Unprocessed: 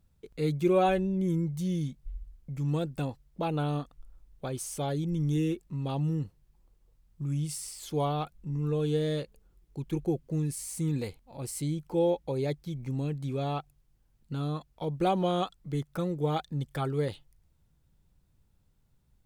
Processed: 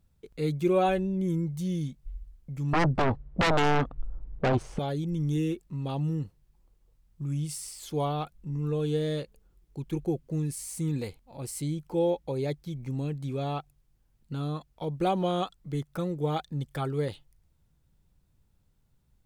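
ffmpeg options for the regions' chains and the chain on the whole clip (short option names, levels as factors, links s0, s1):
-filter_complex "[0:a]asettb=1/sr,asplit=3[s0][s1][s2];[s0]atrim=end=2.734[s3];[s1]atrim=start=2.73:end=4.79,asetpts=PTS-STARTPTS,afade=t=in:d=0.004:c=qsin,afade=t=out:st=2.056:d=0.004:c=qsin,adynamicsmooth=sensitivity=3.5:basefreq=1100,aeval=exprs='0.1*sin(PI/2*4.47*val(0)/0.1)':c=same[s4];[s2]atrim=start=4.786[s5];[s3][s4]acrossfade=d=0.004:c1=hsin:c2=qsin[s6];[s6][s5]acrossfade=d=0.004:c1=qsin:c2=hsin"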